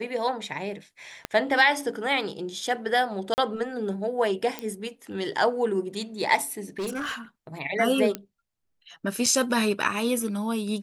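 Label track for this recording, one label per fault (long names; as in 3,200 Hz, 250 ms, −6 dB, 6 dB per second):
1.250000	1.250000	click −14 dBFS
3.340000	3.380000	drop-out 39 ms
4.590000	4.590000	click −15 dBFS
6.790000	7.160000	clipping −26.5 dBFS
8.150000	8.150000	click −13 dBFS
9.260000	9.260000	drop-out 4.9 ms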